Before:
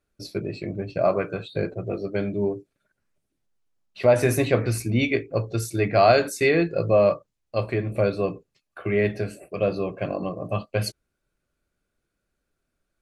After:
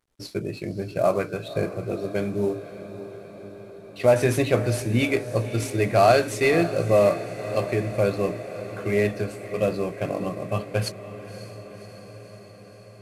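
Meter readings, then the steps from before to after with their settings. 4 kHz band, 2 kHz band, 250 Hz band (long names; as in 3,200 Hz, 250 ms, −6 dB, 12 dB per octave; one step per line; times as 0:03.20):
0.0 dB, 0.0 dB, 0.0 dB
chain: variable-slope delta modulation 64 kbit/s
feedback delay with all-pass diffusion 559 ms, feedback 69%, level −13.5 dB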